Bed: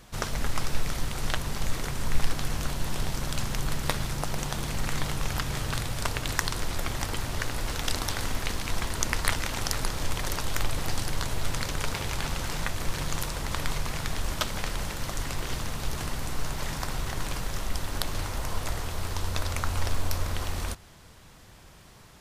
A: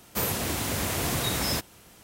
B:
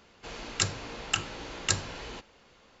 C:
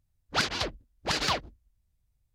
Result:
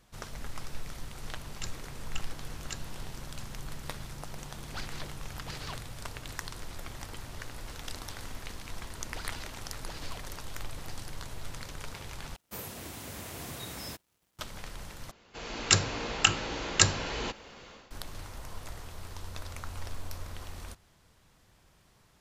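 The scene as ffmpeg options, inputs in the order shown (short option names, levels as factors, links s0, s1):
-filter_complex "[2:a]asplit=2[s0][s1];[3:a]asplit=2[s2][s3];[0:a]volume=0.266[s4];[s3]alimiter=limit=0.0891:level=0:latency=1:release=71[s5];[1:a]aeval=exprs='sgn(val(0))*max(abs(val(0))-0.00251,0)':c=same[s6];[s1]dynaudnorm=f=290:g=3:m=3.76[s7];[s4]asplit=3[s8][s9][s10];[s8]atrim=end=12.364[s11];[s6]atrim=end=2.03,asetpts=PTS-STARTPTS,volume=0.224[s12];[s9]atrim=start=14.386:end=15.114[s13];[s7]atrim=end=2.8,asetpts=PTS-STARTPTS,volume=0.841[s14];[s10]atrim=start=17.906[s15];[s0]atrim=end=2.8,asetpts=PTS-STARTPTS,volume=0.2,afade=t=in:d=0.004:c=hsin,afade=t=out:st=2.796:d=0.004:c=hsin,adelay=1020[s16];[s2]atrim=end=2.34,asetpts=PTS-STARTPTS,volume=0.168,afade=t=in:d=0.004:c=hsin,afade=t=out:st=2.336:d=0.004:c=hsin,adelay=4390[s17];[s5]atrim=end=2.34,asetpts=PTS-STARTPTS,volume=0.188,afade=t=in:d=0.004:c=hsin,afade=t=out:st=2.336:d=0.004:c=hsin,adelay=8810[s18];[s11][s12]acrossfade=d=0.004:c1=hsin:c2=hsin[s19];[s19][s13]acrossfade=d=0.004:c1=hsin:c2=hsin[s20];[s20][s14]acrossfade=d=0.004:c1=hsin:c2=hsin[s21];[s21][s15]acrossfade=d=0.004:c1=hsin:c2=hsin[s22];[s22][s16][s17][s18]amix=inputs=4:normalize=0"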